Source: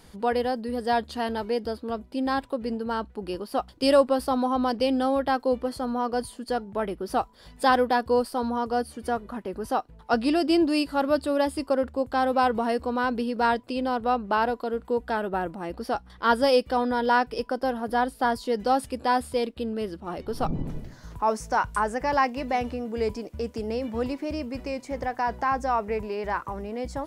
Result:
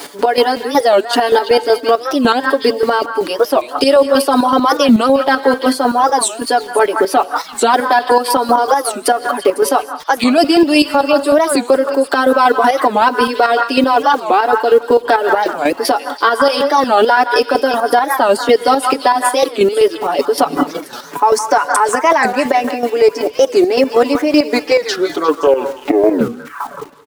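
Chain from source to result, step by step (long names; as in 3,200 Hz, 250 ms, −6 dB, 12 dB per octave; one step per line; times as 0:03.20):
turntable brake at the end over 2.79 s
high-pass filter 300 Hz 24 dB per octave
reverb reduction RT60 0.58 s
comb filter 7 ms, depth 98%
downward compressor 3 to 1, threshold −25 dBFS, peak gain reduction 11.5 dB
bit reduction 10 bits
square-wave tremolo 5.3 Hz, depth 65%, duty 35%
echo through a band-pass that steps 167 ms, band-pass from 1,300 Hz, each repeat 1.4 octaves, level −7 dB
convolution reverb, pre-delay 3 ms, DRR 16.5 dB
boost into a limiter +25 dB
wow of a warped record 45 rpm, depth 250 cents
level −1 dB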